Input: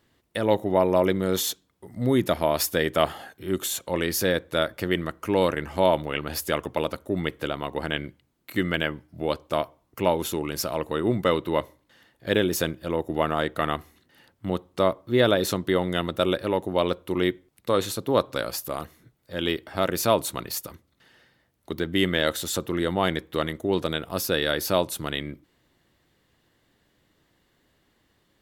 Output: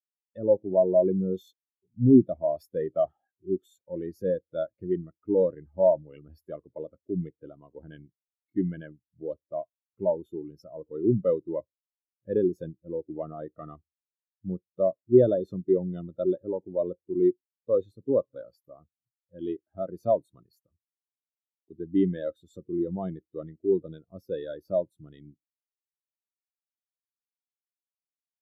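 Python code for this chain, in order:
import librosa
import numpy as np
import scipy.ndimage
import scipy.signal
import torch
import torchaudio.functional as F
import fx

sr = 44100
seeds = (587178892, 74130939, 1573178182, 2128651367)

y = fx.low_shelf(x, sr, hz=420.0, db=5.0)
y = 10.0 ** (-10.0 / 20.0) * np.tanh(y / 10.0 ** (-10.0 / 20.0))
y = fx.spectral_expand(y, sr, expansion=2.5)
y = y * librosa.db_to_amplitude(3.5)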